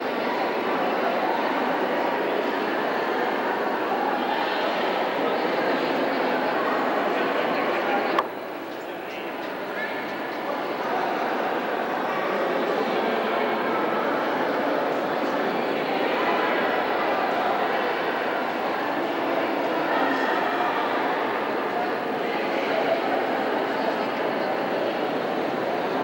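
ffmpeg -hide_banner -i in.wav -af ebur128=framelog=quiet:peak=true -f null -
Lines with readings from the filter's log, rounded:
Integrated loudness:
  I:         -24.7 LUFS
  Threshold: -34.7 LUFS
Loudness range:
  LRA:         2.9 LU
  Threshold: -44.7 LUFS
  LRA low:   -26.7 LUFS
  LRA high:  -23.8 LUFS
True peak:
  Peak:       -7.8 dBFS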